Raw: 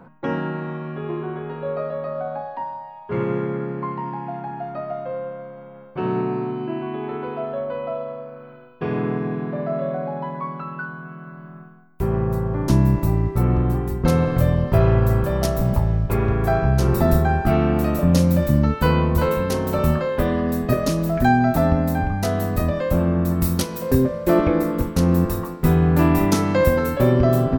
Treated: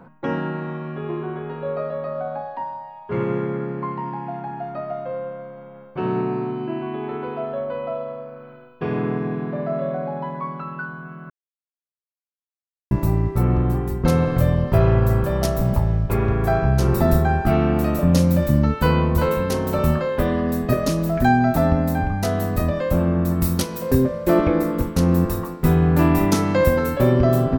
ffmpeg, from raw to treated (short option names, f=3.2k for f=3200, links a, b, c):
-filter_complex "[0:a]asplit=3[a][b][c];[a]atrim=end=11.3,asetpts=PTS-STARTPTS,afade=t=out:st=11.296:d=0.004:c=hsin[d];[b]atrim=start=11.3:end=12.91,asetpts=PTS-STARTPTS,volume=0[e];[c]atrim=start=12.91,asetpts=PTS-STARTPTS,afade=t=in:d=0.004:c=hsin[f];[d][e][f]concat=n=3:v=0:a=1"